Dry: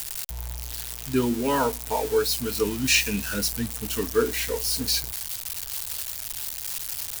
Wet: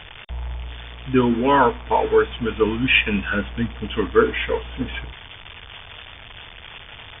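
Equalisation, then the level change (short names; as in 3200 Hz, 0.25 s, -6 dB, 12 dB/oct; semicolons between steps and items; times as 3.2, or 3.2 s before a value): dynamic EQ 1200 Hz, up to +5 dB, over -40 dBFS, Q 1.2; brick-wall FIR low-pass 3600 Hz; +5.5 dB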